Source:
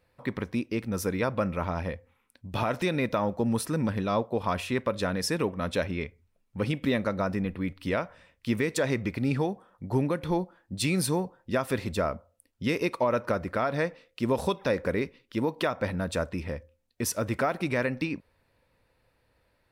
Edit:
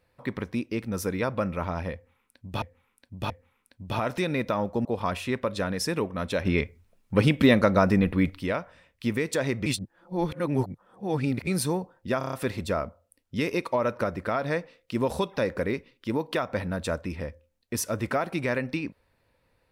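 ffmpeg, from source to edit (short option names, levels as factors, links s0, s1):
-filter_complex "[0:a]asplit=13[s0][s1][s2][s3][s4][s5][s6][s7][s8][s9][s10][s11][s12];[s0]atrim=end=2.622[s13];[s1]atrim=start=1.938:end=2.622[s14];[s2]atrim=start=1.938:end=3.492[s15];[s3]atrim=start=4.278:end=5.882[s16];[s4]atrim=start=5.878:end=7.812,asetpts=PTS-STARTPTS,volume=2.51[s17];[s5]atrim=start=7.808:end=9.092[s18];[s6]atrim=start=9.088:end=10.902,asetpts=PTS-STARTPTS,areverse[s19];[s7]atrim=start=10.898:end=11.642[s20];[s8]atrim=start=11.608:end=11.642[s21];[s9]atrim=start=11.608:end=11.642[s22];[s10]atrim=start=11.608:end=11.642[s23];[s11]atrim=start=11.608:end=11.642[s24];[s12]atrim=start=11.608[s25];[s13][s14]acrossfade=d=0.004:c1=hsin:c2=hsin[s26];[s26][s15]acrossfade=d=0.004:c1=hsin:c2=hsin[s27];[s27][s16]acrossfade=d=0.004:c1=hsin:c2=hsin[s28];[s28][s17]acrossfade=d=0.004:c1=hsin:c2=hsin[s29];[s29][s18]acrossfade=d=0.004:c1=hsin:c2=hsin[s30];[s30][s19]acrossfade=d=0.004:c1=hsin:c2=hsin[s31];[s31][s20]acrossfade=d=0.004:c1=hsin:c2=hsin[s32];[s32][s21]acrossfade=d=0.004:c1=hsin:c2=hsin[s33];[s33][s22]acrossfade=d=0.004:c1=hsin:c2=hsin[s34];[s34][s23]acrossfade=d=0.004:c1=hsin:c2=hsin[s35];[s35][s24]acrossfade=d=0.004:c1=hsin:c2=hsin[s36];[s36][s25]acrossfade=d=0.004:c1=hsin:c2=hsin"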